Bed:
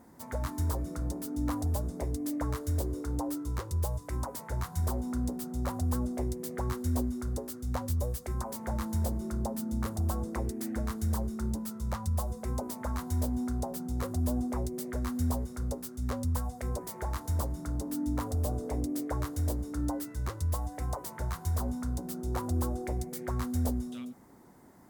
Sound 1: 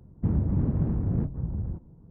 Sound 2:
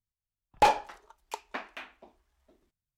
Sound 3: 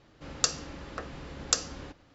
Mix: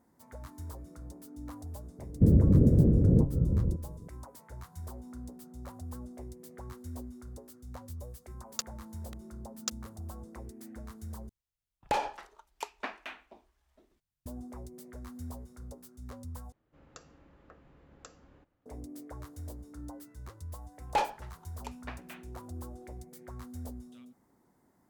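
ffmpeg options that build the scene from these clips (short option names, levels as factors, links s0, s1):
-filter_complex "[3:a]asplit=2[s0][s1];[2:a]asplit=2[s2][s3];[0:a]volume=0.251[s4];[1:a]lowshelf=f=680:t=q:w=3:g=10[s5];[s0]aeval=exprs='val(0)*gte(abs(val(0)),0.0631)':c=same[s6];[s2]acompressor=threshold=0.0562:ratio=6:attack=3.2:release=140:knee=1:detection=peak[s7];[s1]equalizer=f=5300:w=0.69:g=-15[s8];[s4]asplit=3[s9][s10][s11];[s9]atrim=end=11.294[s12];[s7]atrim=end=2.97,asetpts=PTS-STARTPTS,volume=0.944[s13];[s10]atrim=start=14.256:end=16.524[s14];[s8]atrim=end=2.14,asetpts=PTS-STARTPTS,volume=0.15[s15];[s11]atrim=start=18.656[s16];[s5]atrim=end=2.1,asetpts=PTS-STARTPTS,volume=0.473,afade=t=in:d=0.004:c=hsin,afade=t=out:st=2.096:d=0.004:c=hsin,adelay=1980[s17];[s6]atrim=end=2.14,asetpts=PTS-STARTPTS,volume=0.335,afade=t=in:d=0.004:c=hsin,afade=t=out:st=2.136:d=0.004:c=hsin,adelay=8150[s18];[s3]atrim=end=2.97,asetpts=PTS-STARTPTS,volume=0.447,afade=t=in:d=0.004:c=hsin,afade=t=out:st=2.966:d=0.004:c=hsin,adelay=20330[s19];[s12][s13]acrossfade=d=0.004:c1=hsin:c2=hsin[s20];[s20][s14]acrossfade=d=0.004:c1=hsin:c2=hsin[s21];[s21][s15]acrossfade=d=0.004:c1=hsin:c2=hsin[s22];[s22][s16]acrossfade=d=0.004:c1=hsin:c2=hsin[s23];[s23][s17][s18][s19]amix=inputs=4:normalize=0"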